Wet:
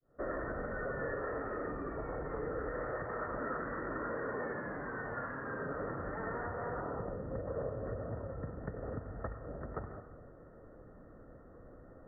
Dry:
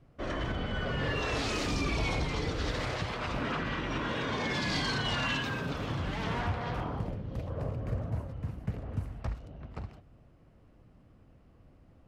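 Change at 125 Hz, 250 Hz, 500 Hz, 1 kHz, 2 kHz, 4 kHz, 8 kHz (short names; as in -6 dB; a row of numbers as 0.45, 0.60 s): -10.5 dB, -7.0 dB, -0.5 dB, -4.5 dB, -7.5 dB, under -40 dB, under -30 dB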